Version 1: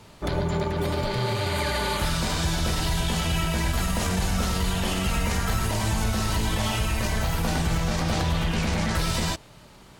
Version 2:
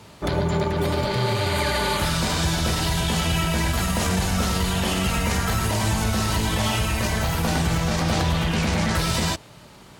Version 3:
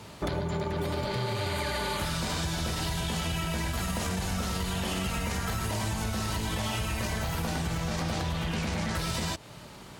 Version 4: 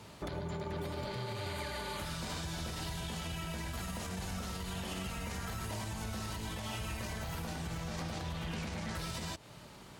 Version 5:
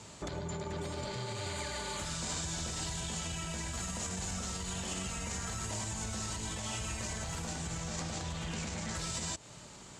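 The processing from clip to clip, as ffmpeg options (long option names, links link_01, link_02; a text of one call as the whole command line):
ffmpeg -i in.wav -af "highpass=58,volume=3.5dB" out.wav
ffmpeg -i in.wav -af "acompressor=threshold=-28dB:ratio=6" out.wav
ffmpeg -i in.wav -af "alimiter=limit=-24dB:level=0:latency=1:release=156,volume=-6dB" out.wav
ffmpeg -i in.wav -af "lowpass=frequency=7400:width_type=q:width=4.9" out.wav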